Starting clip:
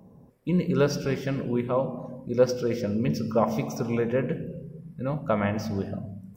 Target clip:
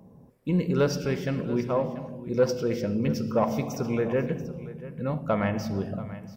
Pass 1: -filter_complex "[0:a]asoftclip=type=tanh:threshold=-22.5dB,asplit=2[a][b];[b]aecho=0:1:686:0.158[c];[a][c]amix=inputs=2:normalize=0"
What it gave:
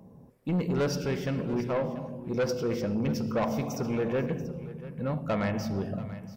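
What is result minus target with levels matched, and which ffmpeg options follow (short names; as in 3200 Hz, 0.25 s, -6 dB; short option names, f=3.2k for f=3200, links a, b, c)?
soft clip: distortion +13 dB
-filter_complex "[0:a]asoftclip=type=tanh:threshold=-11.5dB,asplit=2[a][b];[b]aecho=0:1:686:0.158[c];[a][c]amix=inputs=2:normalize=0"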